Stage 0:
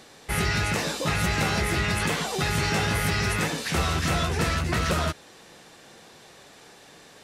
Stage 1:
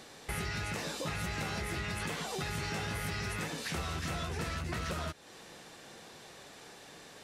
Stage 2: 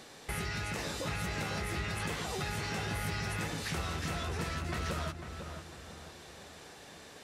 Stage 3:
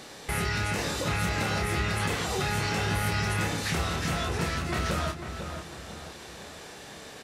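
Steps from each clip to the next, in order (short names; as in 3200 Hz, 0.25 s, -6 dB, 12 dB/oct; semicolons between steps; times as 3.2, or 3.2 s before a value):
compressor 3:1, threshold -35 dBFS, peak gain reduction 11 dB; gain -2 dB
darkening echo 0.499 s, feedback 44%, low-pass 1800 Hz, level -7.5 dB
doubler 29 ms -5.5 dB; gain +6 dB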